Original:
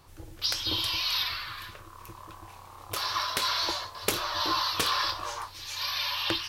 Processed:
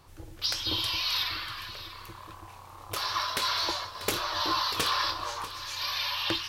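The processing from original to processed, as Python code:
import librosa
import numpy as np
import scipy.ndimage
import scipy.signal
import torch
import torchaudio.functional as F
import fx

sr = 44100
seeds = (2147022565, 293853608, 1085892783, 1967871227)

p1 = fx.high_shelf(x, sr, hz=6700.0, db=-2.5)
p2 = np.clip(p1, -10.0 ** (-18.5 / 20.0), 10.0 ** (-18.5 / 20.0))
y = p2 + fx.echo_single(p2, sr, ms=641, db=-14.0, dry=0)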